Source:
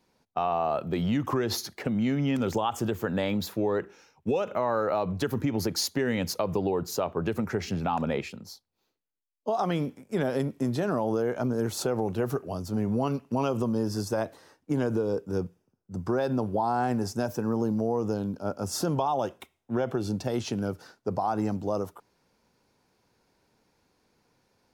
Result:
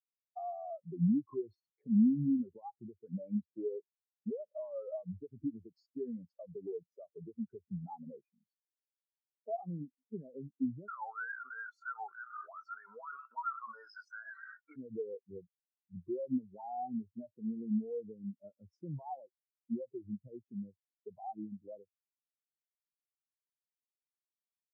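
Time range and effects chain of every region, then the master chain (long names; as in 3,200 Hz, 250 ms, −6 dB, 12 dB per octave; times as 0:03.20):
0:10.88–0:14.76: high-pass with resonance 1,400 Hz, resonance Q 4.5 + envelope flattener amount 100%
whole clip: downward compressor 2.5 to 1, threshold −38 dBFS; every bin expanded away from the loudest bin 4 to 1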